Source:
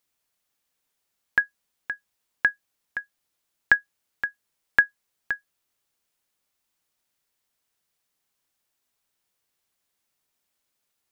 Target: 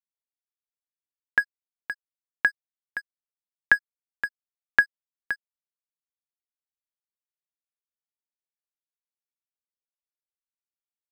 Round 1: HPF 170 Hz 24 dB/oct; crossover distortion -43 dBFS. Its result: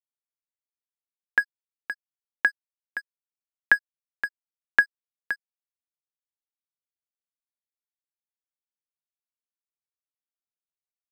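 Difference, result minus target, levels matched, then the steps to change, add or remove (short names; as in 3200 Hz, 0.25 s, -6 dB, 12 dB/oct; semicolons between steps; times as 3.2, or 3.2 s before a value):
125 Hz band -7.5 dB
change: HPF 46 Hz 24 dB/oct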